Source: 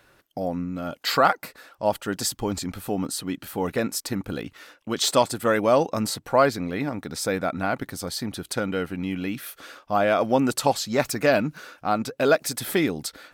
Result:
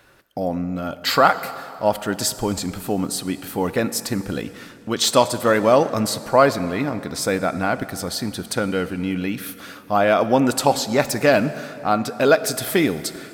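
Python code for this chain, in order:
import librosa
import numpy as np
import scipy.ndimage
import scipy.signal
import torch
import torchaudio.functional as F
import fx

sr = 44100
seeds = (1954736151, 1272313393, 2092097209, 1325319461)

y = fx.rev_plate(x, sr, seeds[0], rt60_s=2.8, hf_ratio=0.75, predelay_ms=0, drr_db=13.0)
y = y * librosa.db_to_amplitude(4.0)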